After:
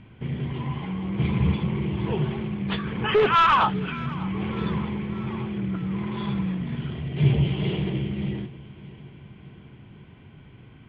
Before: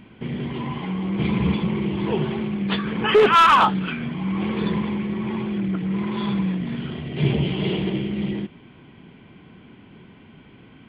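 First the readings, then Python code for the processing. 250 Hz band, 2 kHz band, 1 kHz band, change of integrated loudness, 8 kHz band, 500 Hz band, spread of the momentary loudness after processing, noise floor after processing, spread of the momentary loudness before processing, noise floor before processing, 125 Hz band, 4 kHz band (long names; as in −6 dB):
−4.0 dB, −4.0 dB, −4.0 dB, −3.5 dB, can't be measured, −5.0 dB, 11 LU, −49 dBFS, 14 LU, −48 dBFS, +1.0 dB, −5.0 dB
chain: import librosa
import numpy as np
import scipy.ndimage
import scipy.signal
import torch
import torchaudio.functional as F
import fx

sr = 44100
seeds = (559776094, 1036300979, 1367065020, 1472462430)

y = scipy.signal.sosfilt(scipy.signal.butter(2, 4400.0, 'lowpass', fs=sr, output='sos'), x)
y = fx.low_shelf_res(y, sr, hz=160.0, db=7.0, q=1.5)
y = fx.echo_feedback(y, sr, ms=597, feedback_pct=58, wet_db=-19.5)
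y = y * librosa.db_to_amplitude(-4.0)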